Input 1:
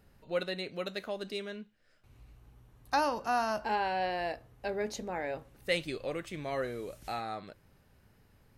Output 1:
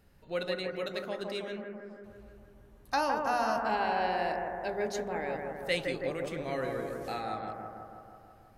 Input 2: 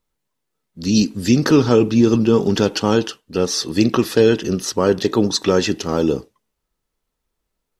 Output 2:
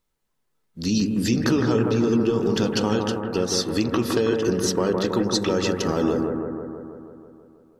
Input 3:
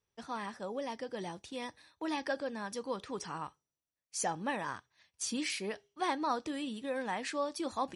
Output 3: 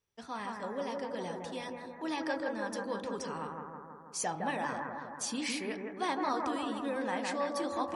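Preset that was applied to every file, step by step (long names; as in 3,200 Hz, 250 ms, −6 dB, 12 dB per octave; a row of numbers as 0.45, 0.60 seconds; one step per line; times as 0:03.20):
hum removal 48.45 Hz, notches 30
downward compressor 3 to 1, threshold −21 dBFS
on a send: bucket-brigade delay 162 ms, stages 2,048, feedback 67%, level −3.5 dB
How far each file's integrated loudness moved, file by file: +1.5, −5.5, +1.5 LU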